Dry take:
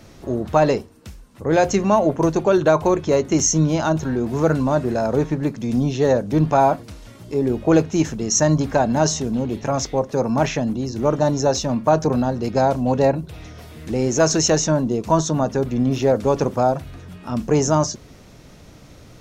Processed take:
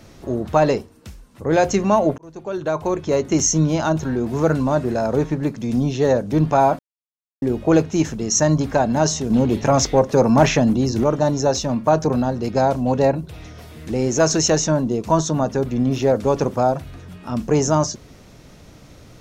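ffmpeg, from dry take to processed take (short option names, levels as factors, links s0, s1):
-filter_complex "[0:a]asettb=1/sr,asplit=3[s0][s1][s2];[s0]atrim=end=9.304[s3];[s1]atrim=start=9.3:end=11.04,asetpts=PTS-STARTPTS,afade=t=in:d=0.004:c=qsin,afade=t=out:st=1.736:d=0.004:c=qsin,acontrast=55[s4];[s2]atrim=start=11.036[s5];[s3][s4]acrossfade=d=0.004:c1=hsin:c2=qsin[s6];[s6][s5]acrossfade=d=0.004:c1=qsin:c2=hsin,asplit=4[s7][s8][s9][s10];[s7]atrim=end=2.18,asetpts=PTS-STARTPTS,afade=t=out:st=2.176:d=0.004:c=hsin[s11];[s8]atrim=start=2.18:end=6.79,asetpts=PTS-STARTPTS,afade=t=in:d=1.14,afade=t=out:st=4.606:d=0.004:c=hsin[s12];[s9]atrim=start=6.79:end=7.42,asetpts=PTS-STARTPTS,volume=0[s13];[s10]atrim=start=7.42,asetpts=PTS-STARTPTS,afade=t=in:d=0.004:c=hsin[s14];[s11][s12][s13][s14]concat=n=4:v=0:a=1"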